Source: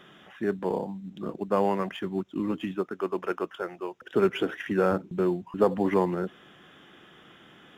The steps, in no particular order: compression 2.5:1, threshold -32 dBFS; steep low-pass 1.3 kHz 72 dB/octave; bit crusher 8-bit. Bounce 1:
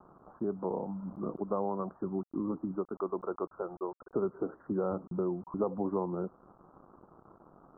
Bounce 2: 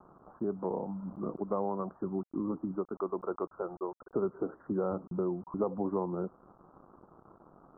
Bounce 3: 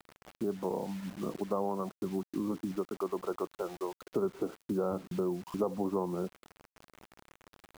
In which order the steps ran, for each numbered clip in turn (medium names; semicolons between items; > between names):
bit crusher > compression > steep low-pass; bit crusher > steep low-pass > compression; steep low-pass > bit crusher > compression